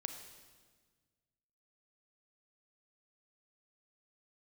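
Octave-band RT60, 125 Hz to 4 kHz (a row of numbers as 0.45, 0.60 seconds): 2.2, 1.9, 1.6, 1.4, 1.4, 1.4 seconds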